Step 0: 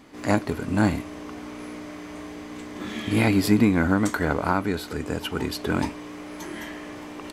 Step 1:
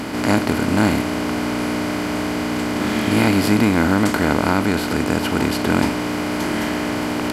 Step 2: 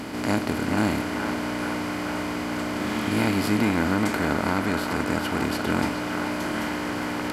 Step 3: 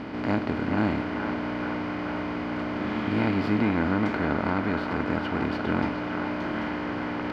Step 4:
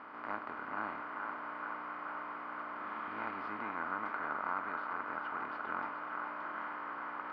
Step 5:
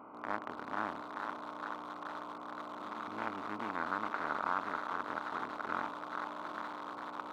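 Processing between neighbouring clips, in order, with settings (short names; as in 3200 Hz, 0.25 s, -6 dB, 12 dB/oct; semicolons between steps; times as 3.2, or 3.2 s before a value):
per-bin compression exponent 0.4
narrowing echo 0.428 s, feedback 74%, band-pass 1300 Hz, level -3.5 dB; gain -7 dB
air absorption 270 m; gain -1 dB
band-pass 1200 Hz, Q 3.5; gain -1 dB
Wiener smoothing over 25 samples; gain +3.5 dB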